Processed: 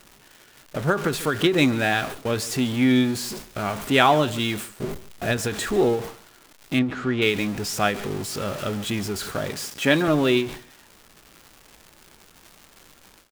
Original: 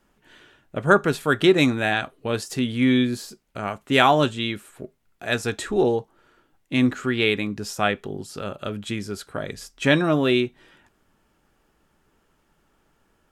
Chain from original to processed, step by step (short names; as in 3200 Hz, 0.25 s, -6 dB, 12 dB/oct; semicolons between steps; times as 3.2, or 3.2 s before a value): zero-crossing step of -27.5 dBFS; 9.5–10.08 HPF 160 Hz 12 dB/oct; gate with hold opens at -27 dBFS; 4.83–5.37 low shelf 320 Hz +9.5 dB; crackle 270/s -34 dBFS; 6.79–7.22 tape spacing loss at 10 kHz 22 dB; echo 0.141 s -19 dB; ending taper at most 130 dB/s; gain -1 dB